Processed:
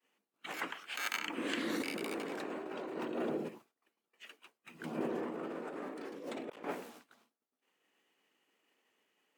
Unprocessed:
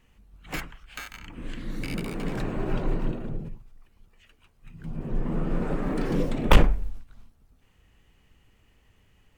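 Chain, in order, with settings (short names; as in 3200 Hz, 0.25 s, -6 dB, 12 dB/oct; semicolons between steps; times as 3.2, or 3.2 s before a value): HPF 290 Hz 24 dB/oct; expander -57 dBFS; negative-ratio compressor -42 dBFS, ratio -1; gain +1 dB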